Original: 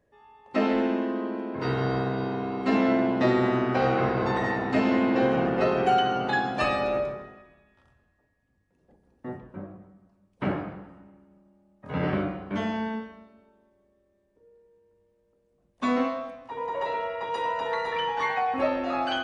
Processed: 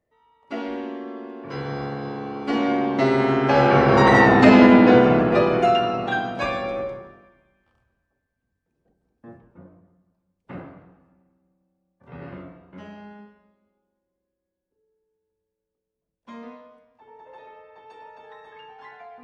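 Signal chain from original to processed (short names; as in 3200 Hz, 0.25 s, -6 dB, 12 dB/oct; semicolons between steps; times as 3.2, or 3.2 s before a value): Doppler pass-by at 4.37, 24 m/s, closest 9 m; maximiser +15.5 dB; gain -1 dB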